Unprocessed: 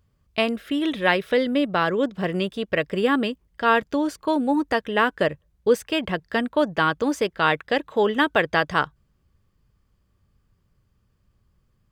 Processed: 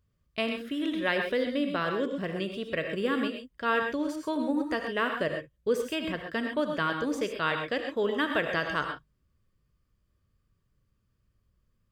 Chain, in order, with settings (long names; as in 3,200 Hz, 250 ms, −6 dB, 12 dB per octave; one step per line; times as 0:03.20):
parametric band 820 Hz −9.5 dB 0.26 octaves
reverb whose tail is shaped and stops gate 150 ms rising, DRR 4 dB
level −8 dB